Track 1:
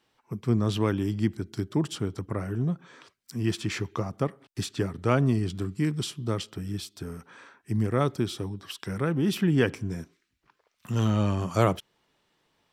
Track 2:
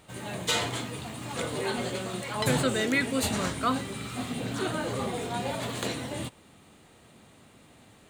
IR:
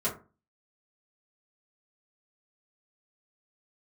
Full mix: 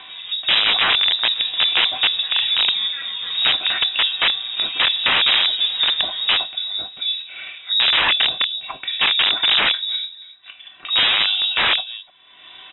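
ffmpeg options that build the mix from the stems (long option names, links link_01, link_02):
-filter_complex "[0:a]aecho=1:1:2.5:0.67,adynamicequalizer=threshold=0.0141:dfrequency=560:dqfactor=1.2:tfrequency=560:tqfactor=1.2:attack=5:release=100:ratio=0.375:range=3:mode=boostabove:tftype=bell,volume=2.5dB,asplit=4[link_01][link_02][link_03][link_04];[link_02]volume=-6.5dB[link_05];[link_03]volume=-19dB[link_06];[1:a]alimiter=limit=-23dB:level=0:latency=1:release=24,dynaudnorm=framelen=230:gausssize=7:maxgain=12dB,aemphasis=mode=reproduction:type=cd,volume=-14.5dB,asplit=3[link_07][link_08][link_09];[link_08]volume=-4.5dB[link_10];[link_09]volume=-6dB[link_11];[link_04]apad=whole_len=356943[link_12];[link_07][link_12]sidechaingate=range=-7dB:threshold=-44dB:ratio=16:detection=peak[link_13];[2:a]atrim=start_sample=2205[link_14];[link_05][link_10]amix=inputs=2:normalize=0[link_15];[link_15][link_14]afir=irnorm=-1:irlink=0[link_16];[link_06][link_11]amix=inputs=2:normalize=0,aecho=0:1:299:1[link_17];[link_01][link_13][link_16][link_17]amix=inputs=4:normalize=0,acompressor=mode=upward:threshold=-22dB:ratio=2.5,aeval=exprs='(mod(3.16*val(0)+1,2)-1)/3.16':channel_layout=same,lowpass=frequency=3300:width_type=q:width=0.5098,lowpass=frequency=3300:width_type=q:width=0.6013,lowpass=frequency=3300:width_type=q:width=0.9,lowpass=frequency=3300:width_type=q:width=2.563,afreqshift=-3900"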